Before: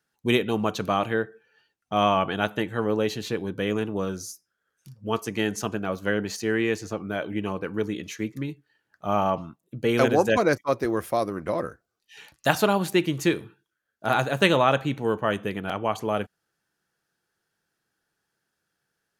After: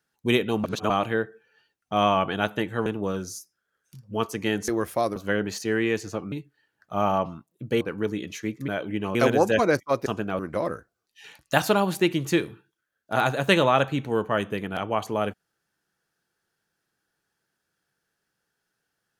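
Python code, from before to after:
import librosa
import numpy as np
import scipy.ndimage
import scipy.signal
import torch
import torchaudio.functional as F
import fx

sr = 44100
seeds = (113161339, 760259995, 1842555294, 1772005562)

y = fx.edit(x, sr, fx.reverse_span(start_s=0.64, length_s=0.26),
    fx.cut(start_s=2.86, length_s=0.93),
    fx.swap(start_s=5.61, length_s=0.33, other_s=10.84, other_length_s=0.48),
    fx.swap(start_s=7.1, length_s=0.47, other_s=8.44, other_length_s=1.49), tone=tone)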